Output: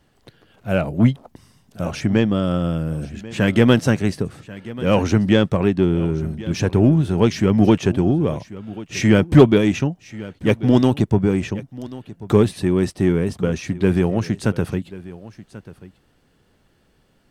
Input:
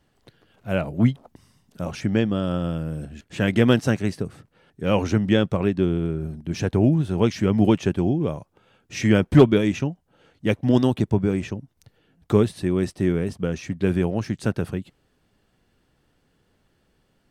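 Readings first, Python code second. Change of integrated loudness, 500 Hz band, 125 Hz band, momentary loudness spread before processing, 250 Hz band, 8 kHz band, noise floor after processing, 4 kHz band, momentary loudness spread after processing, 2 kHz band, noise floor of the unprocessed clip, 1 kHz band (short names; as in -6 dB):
+3.5 dB, +3.5 dB, +4.0 dB, 13 LU, +4.0 dB, +5.0 dB, -61 dBFS, +4.0 dB, 17 LU, +4.0 dB, -68 dBFS, +4.0 dB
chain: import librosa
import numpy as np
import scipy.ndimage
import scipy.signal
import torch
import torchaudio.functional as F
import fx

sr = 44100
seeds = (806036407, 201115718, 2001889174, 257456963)

p1 = 10.0 ** (-19.5 / 20.0) * np.tanh(x / 10.0 ** (-19.5 / 20.0))
p2 = x + (p1 * librosa.db_to_amplitude(-7.0))
p3 = p2 + 10.0 ** (-18.0 / 20.0) * np.pad(p2, (int(1088 * sr / 1000.0), 0))[:len(p2)]
y = p3 * librosa.db_to_amplitude(2.0)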